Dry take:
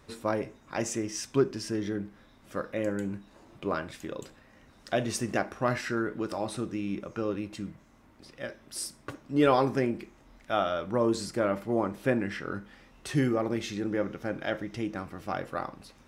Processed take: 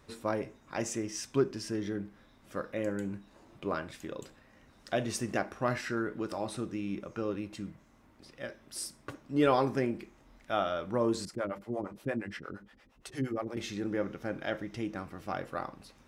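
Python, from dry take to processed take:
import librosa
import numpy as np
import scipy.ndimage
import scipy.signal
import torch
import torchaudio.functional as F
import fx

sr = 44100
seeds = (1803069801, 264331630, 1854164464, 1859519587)

y = fx.harmonic_tremolo(x, sr, hz=8.6, depth_pct=100, crossover_hz=440.0, at=(11.25, 13.57))
y = y * 10.0 ** (-3.0 / 20.0)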